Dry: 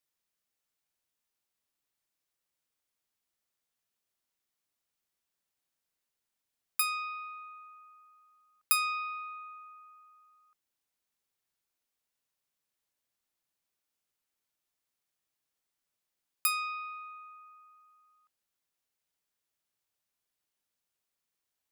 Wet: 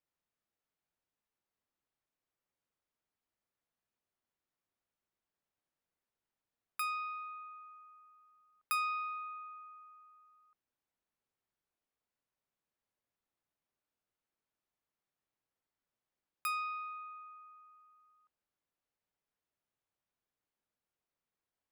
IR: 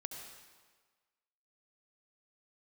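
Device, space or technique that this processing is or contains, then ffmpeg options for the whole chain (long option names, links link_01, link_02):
through cloth: -af "highshelf=frequency=3000:gain=-17,volume=1dB"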